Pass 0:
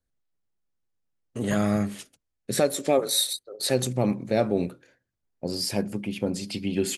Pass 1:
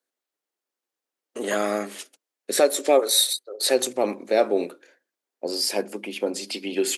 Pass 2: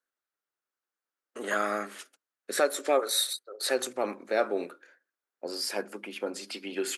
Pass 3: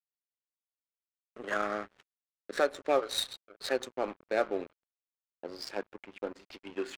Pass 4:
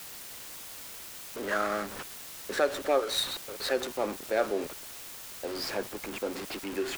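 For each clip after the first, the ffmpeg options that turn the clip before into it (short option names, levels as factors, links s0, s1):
-af "highpass=f=320:w=0.5412,highpass=f=320:w=1.3066,volume=1.68"
-af "equalizer=f=1400:w=1.6:g=11.5,volume=0.376"
-af "acrusher=bits=7:mode=log:mix=0:aa=0.000001,aeval=exprs='sgn(val(0))*max(abs(val(0))-0.00891,0)':c=same,adynamicsmooth=sensitivity=4.5:basefreq=2400,volume=0.841"
-af "aeval=exprs='val(0)+0.5*0.0251*sgn(val(0))':c=same"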